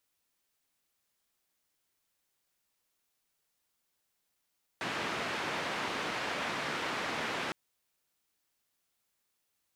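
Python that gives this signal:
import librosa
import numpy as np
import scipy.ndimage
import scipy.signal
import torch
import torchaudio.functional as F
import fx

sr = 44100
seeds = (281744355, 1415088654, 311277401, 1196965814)

y = fx.band_noise(sr, seeds[0], length_s=2.71, low_hz=150.0, high_hz=2200.0, level_db=-35.5)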